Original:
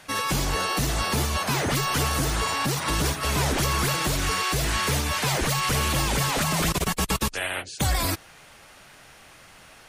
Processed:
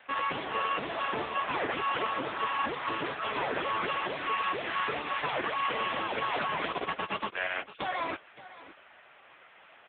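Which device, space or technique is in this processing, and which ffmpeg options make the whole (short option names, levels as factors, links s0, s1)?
satellite phone: -af "highpass=370,lowpass=3300,aecho=1:1:568:0.15" -ar 8000 -c:a libopencore_amrnb -b:a 6700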